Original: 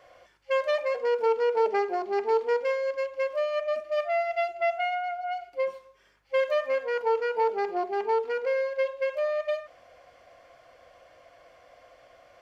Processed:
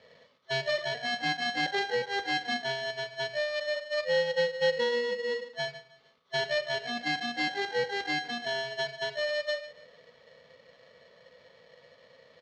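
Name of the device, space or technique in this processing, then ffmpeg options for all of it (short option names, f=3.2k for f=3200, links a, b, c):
ring modulator pedal into a guitar cabinet: -af "aecho=1:1:149|298|447:0.119|0.0475|0.019,aeval=exprs='val(0)*sgn(sin(2*PI*1200*n/s))':c=same,highpass=110,equalizer=f=120:t=q:w=4:g=-5,equalizer=f=320:t=q:w=4:g=-8,equalizer=f=500:t=q:w=4:g=6,equalizer=f=720:t=q:w=4:g=-8,equalizer=f=1.7k:t=q:w=4:g=-7,equalizer=f=2.7k:t=q:w=4:g=-8,lowpass=f=4.4k:w=0.5412,lowpass=f=4.4k:w=1.3066"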